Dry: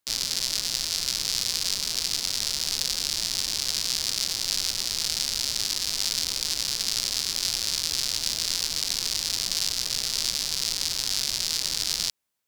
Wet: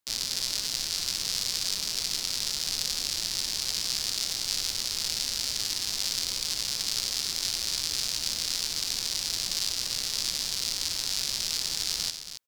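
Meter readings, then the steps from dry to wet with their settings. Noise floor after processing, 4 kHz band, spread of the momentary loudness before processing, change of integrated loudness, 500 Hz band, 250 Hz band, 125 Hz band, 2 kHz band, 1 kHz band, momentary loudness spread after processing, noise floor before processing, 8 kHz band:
−35 dBFS, −2.5 dB, 1 LU, −2.5 dB, −3.0 dB, −2.5 dB, −2.5 dB, −2.5 dB, −2.5 dB, 1 LU, −32 dBFS, −2.5 dB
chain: loudspeakers that aren't time-aligned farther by 21 metres −10 dB, 94 metres −10 dB
level −3.5 dB

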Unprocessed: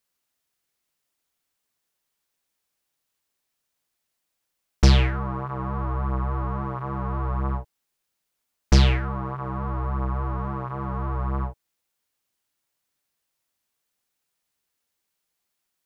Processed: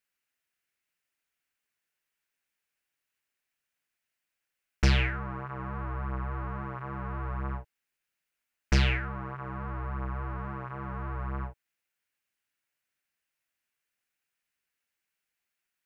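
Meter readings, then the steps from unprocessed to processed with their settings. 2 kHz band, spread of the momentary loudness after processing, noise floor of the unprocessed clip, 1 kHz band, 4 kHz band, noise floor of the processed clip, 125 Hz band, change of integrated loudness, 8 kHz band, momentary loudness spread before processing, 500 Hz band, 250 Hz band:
+0.5 dB, 12 LU, −80 dBFS, −7.0 dB, −6.0 dB, below −85 dBFS, −8.0 dB, −7.0 dB, can't be measured, 11 LU, −8.0 dB, −8.0 dB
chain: flat-topped bell 2,000 Hz +8.5 dB 1.2 octaves
level −8 dB

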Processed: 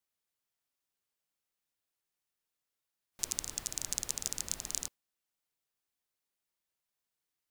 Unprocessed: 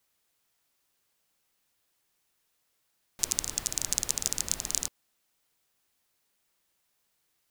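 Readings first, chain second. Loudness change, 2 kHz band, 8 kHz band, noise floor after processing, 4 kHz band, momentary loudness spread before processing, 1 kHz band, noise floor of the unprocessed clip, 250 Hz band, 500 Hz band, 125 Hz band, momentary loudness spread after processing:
−6.5 dB, −6.5 dB, −6.5 dB, below −85 dBFS, −6.5 dB, 3 LU, −6.5 dB, −76 dBFS, −6.5 dB, −6.5 dB, −6.5 dB, 3 LU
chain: noise reduction from a noise print of the clip's start 7 dB
level −6.5 dB

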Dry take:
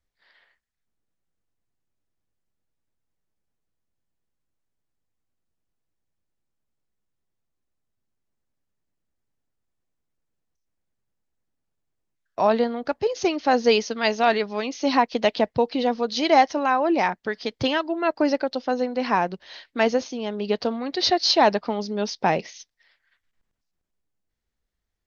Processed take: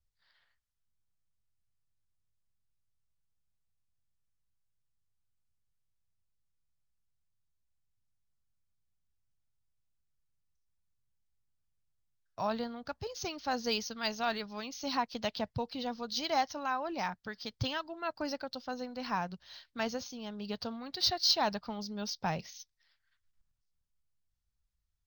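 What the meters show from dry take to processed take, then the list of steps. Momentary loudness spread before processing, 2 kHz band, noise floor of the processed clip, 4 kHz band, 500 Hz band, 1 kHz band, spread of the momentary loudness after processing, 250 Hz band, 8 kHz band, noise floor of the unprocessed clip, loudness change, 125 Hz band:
9 LU, −12.5 dB, −80 dBFS, −7.0 dB, −16.5 dB, −13.0 dB, 11 LU, −14.0 dB, can't be measured, −80 dBFS, −12.5 dB, −5.5 dB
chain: drawn EQ curve 120 Hz 0 dB, 350 Hz −20 dB, 1,400 Hz −9 dB, 2,000 Hz −15 dB, 4,900 Hz −4 dB
linearly interpolated sample-rate reduction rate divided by 2×

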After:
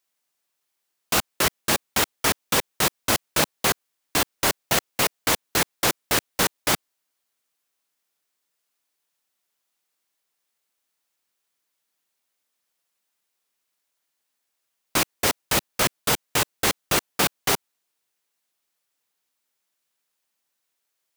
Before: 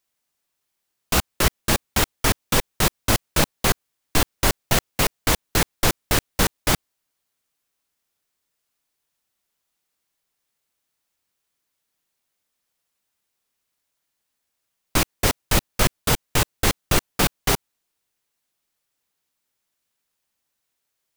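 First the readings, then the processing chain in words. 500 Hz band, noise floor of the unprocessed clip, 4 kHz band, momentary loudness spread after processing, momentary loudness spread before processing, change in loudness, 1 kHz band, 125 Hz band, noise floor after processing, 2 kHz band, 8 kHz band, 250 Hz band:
−1.5 dB, −78 dBFS, 0.0 dB, 3 LU, 3 LU, −1.0 dB, −0.5 dB, −9.0 dB, −78 dBFS, 0.0 dB, 0.0 dB, −4.0 dB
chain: high-pass filter 300 Hz 6 dB per octave

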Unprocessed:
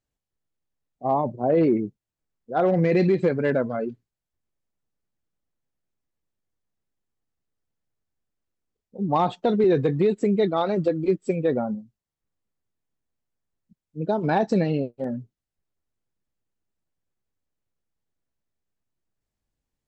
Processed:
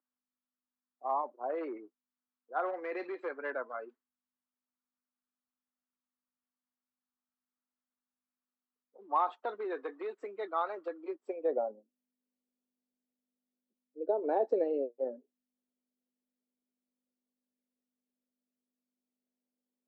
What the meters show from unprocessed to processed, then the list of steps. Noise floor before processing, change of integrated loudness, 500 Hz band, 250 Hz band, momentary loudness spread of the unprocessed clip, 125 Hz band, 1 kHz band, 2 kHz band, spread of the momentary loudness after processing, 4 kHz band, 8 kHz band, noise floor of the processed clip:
below −85 dBFS, −12.5 dB, −11.5 dB, −20.5 dB, 12 LU, below −40 dB, −7.5 dB, −9.5 dB, 11 LU, below −15 dB, can't be measured, below −85 dBFS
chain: mains hum 50 Hz, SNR 30 dB
Butterworth high-pass 270 Hz 48 dB per octave
band-pass filter sweep 1,200 Hz → 500 Hz, 0:10.95–0:11.77
level −2 dB

